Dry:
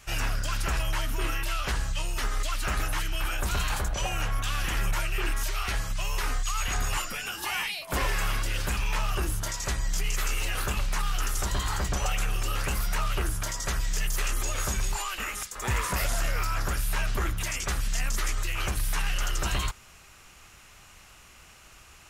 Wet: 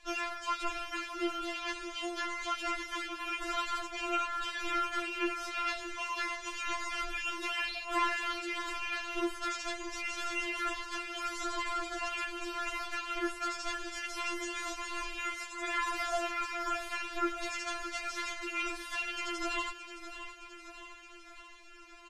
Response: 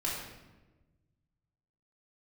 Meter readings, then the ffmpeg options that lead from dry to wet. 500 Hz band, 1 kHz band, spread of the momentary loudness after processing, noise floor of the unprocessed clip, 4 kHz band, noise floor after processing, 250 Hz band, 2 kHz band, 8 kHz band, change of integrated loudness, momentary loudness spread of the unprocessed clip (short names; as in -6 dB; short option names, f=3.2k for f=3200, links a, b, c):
-1.5 dB, -1.0 dB, 5 LU, -52 dBFS, -5.0 dB, -51 dBFS, 0.0 dB, -3.0 dB, -12.0 dB, -5.0 dB, 2 LU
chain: -af "lowpass=4.4k,aecho=1:1:618|1236|1854|2472|3090|3708|4326:0.266|0.16|0.0958|0.0575|0.0345|0.0207|0.0124,afftfilt=real='re*4*eq(mod(b,16),0)':imag='im*4*eq(mod(b,16),0)':win_size=2048:overlap=0.75"